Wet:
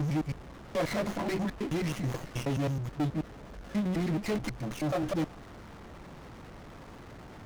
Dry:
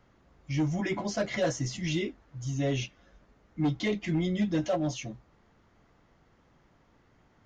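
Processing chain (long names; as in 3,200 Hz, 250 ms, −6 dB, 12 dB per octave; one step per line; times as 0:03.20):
slices reordered back to front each 107 ms, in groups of 7
power curve on the samples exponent 0.5
windowed peak hold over 9 samples
level −3.5 dB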